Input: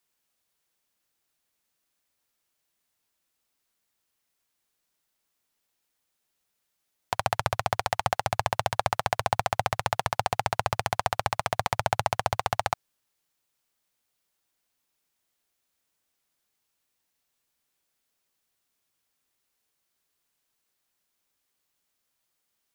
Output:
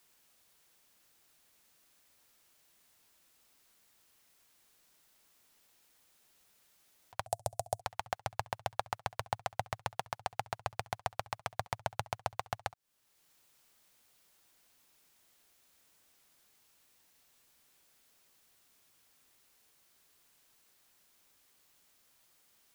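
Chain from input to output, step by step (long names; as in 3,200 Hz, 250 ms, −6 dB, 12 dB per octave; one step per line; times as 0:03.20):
0:07.26–0:07.81: drawn EQ curve 110 Hz 0 dB, 250 Hz −9 dB, 690 Hz +7 dB, 1,200 Hz −16 dB, 2,300 Hz −15 dB, 8,900 Hz +13 dB, 14,000 Hz +5 dB
volume swells 610 ms
level +10 dB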